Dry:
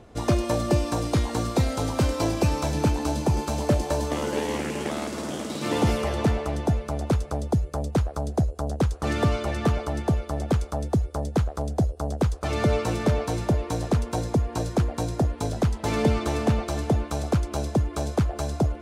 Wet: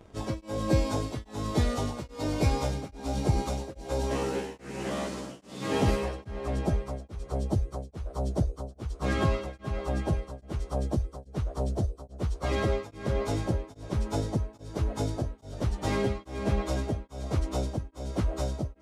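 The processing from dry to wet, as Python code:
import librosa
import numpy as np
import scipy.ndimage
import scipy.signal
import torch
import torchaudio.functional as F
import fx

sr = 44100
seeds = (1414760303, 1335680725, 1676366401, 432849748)

y = fx.pitch_bins(x, sr, semitones=-1.5)
y = y * np.abs(np.cos(np.pi * 1.2 * np.arange(len(y)) / sr))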